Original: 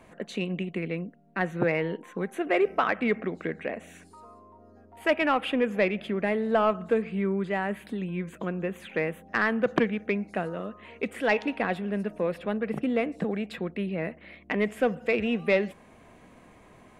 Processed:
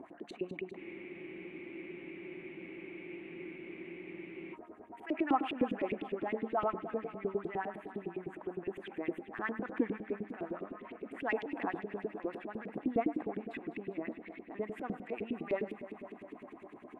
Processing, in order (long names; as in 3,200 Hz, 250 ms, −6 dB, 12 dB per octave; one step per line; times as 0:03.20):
drawn EQ curve 190 Hz 0 dB, 300 Hz +12 dB, 490 Hz −9 dB, 730 Hz 0 dB, 5,100 Hz −13 dB, 8,700 Hz −2 dB
transient designer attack −12 dB, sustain +6 dB
upward compression, threshold −34 dBFS
auto-filter band-pass saw up 9.8 Hz 300–3,400 Hz
on a send: delay that swaps between a low-pass and a high-pass 101 ms, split 2,100 Hz, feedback 86%, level −11.5 dB
on the sum: frozen spectrum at 0:00.80, 3.75 s